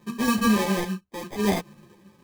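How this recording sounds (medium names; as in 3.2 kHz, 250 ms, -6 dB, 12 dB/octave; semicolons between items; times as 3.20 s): random-step tremolo 3.6 Hz, depth 65%; aliases and images of a low sample rate 1.4 kHz, jitter 0%; a shimmering, thickened sound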